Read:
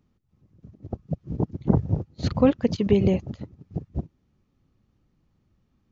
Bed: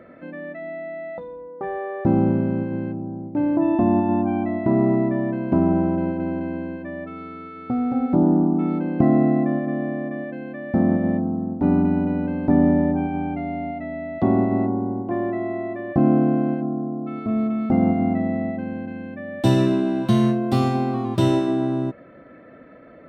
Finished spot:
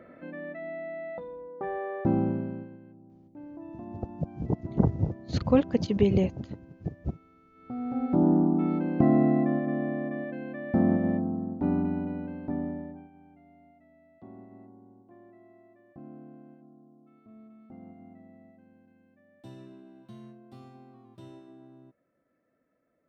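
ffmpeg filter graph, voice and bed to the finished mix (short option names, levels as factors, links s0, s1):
-filter_complex "[0:a]adelay=3100,volume=0.708[s0];[1:a]volume=5.01,afade=t=out:st=1.95:d=0.83:silence=0.11885,afade=t=in:st=7.51:d=0.76:silence=0.112202,afade=t=out:st=10.87:d=2.24:silence=0.0562341[s1];[s0][s1]amix=inputs=2:normalize=0"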